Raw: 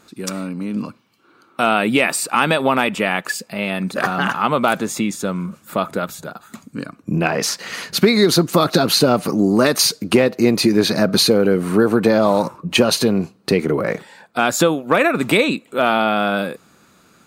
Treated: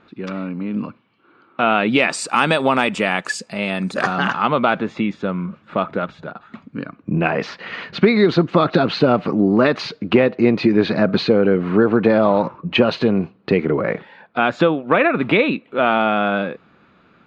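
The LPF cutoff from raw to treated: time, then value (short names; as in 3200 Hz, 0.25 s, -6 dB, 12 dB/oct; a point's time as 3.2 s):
LPF 24 dB/oct
1.7 s 3200 Hz
2.26 s 8200 Hz
3.94 s 8200 Hz
4.81 s 3200 Hz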